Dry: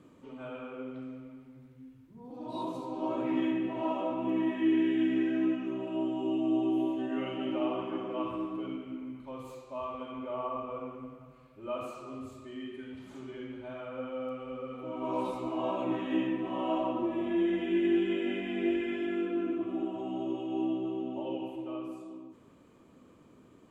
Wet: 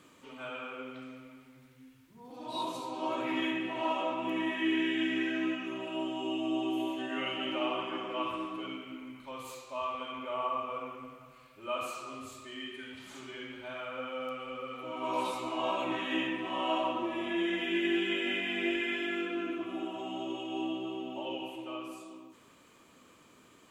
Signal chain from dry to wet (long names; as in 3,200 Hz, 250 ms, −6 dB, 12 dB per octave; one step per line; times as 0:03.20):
tilt shelving filter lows −9 dB, about 910 Hz
level +2.5 dB